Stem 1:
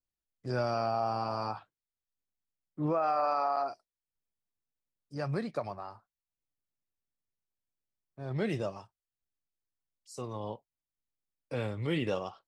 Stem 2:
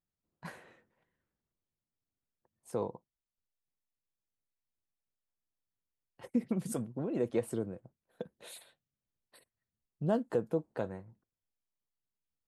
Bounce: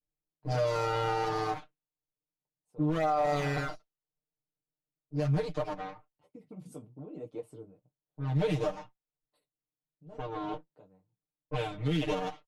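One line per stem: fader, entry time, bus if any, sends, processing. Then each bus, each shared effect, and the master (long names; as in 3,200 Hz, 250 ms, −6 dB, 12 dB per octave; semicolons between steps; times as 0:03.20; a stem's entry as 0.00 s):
−2.5 dB, 0.00 s, no send, lower of the sound and its delayed copy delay 6.7 ms; low-pass that shuts in the quiet parts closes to 670 Hz, open at −32.5 dBFS; comb filter 6.4 ms, depth 98%
−8.0 dB, 0.00 s, no send, high-shelf EQ 6,200 Hz −8 dB; flanger 1.1 Hz, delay 9.7 ms, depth 10 ms, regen −27%; parametric band 1,700 Hz −13.5 dB 0.43 octaves; automatic ducking −11 dB, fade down 0.75 s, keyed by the first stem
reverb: not used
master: comb filter 6.7 ms, depth 81%; brickwall limiter −20.5 dBFS, peak gain reduction 7 dB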